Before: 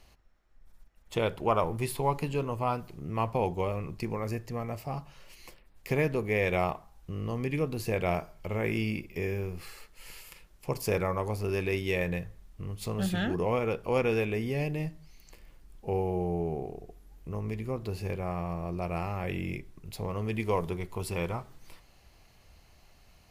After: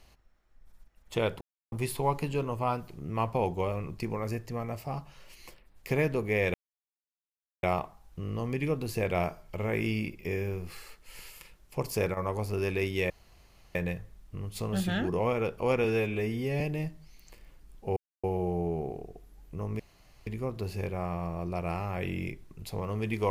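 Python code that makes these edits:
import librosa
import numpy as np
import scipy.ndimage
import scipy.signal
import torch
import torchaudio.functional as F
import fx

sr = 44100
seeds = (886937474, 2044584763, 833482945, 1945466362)

y = fx.edit(x, sr, fx.silence(start_s=1.41, length_s=0.31),
    fx.insert_silence(at_s=6.54, length_s=1.09),
    fx.fade_down_up(start_s=10.76, length_s=0.61, db=-11.0, fade_s=0.29, curve='log'),
    fx.insert_room_tone(at_s=12.01, length_s=0.65),
    fx.stretch_span(start_s=14.1, length_s=0.51, factor=1.5),
    fx.insert_silence(at_s=15.97, length_s=0.27),
    fx.insert_room_tone(at_s=17.53, length_s=0.47), tone=tone)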